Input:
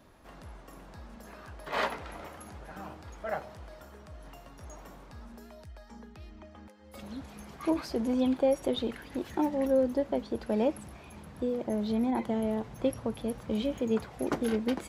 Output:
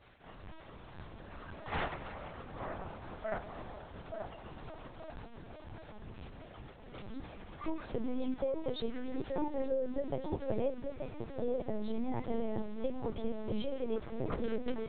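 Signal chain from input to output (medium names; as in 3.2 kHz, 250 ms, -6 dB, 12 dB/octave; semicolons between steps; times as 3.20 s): compression 6:1, threshold -29 dBFS, peak gain reduction 8 dB; bit crusher 9-bit; on a send: feedback echo behind a low-pass 881 ms, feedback 39%, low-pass 1.1 kHz, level -4.5 dB; on the sum: LPC vocoder at 8 kHz pitch kept; trim -2 dB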